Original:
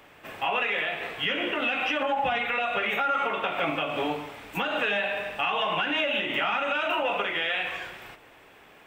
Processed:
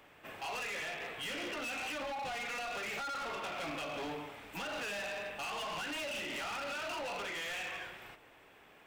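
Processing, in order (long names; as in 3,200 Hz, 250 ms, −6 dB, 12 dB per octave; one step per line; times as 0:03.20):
hard clipping −30.5 dBFS, distortion −7 dB
level −7 dB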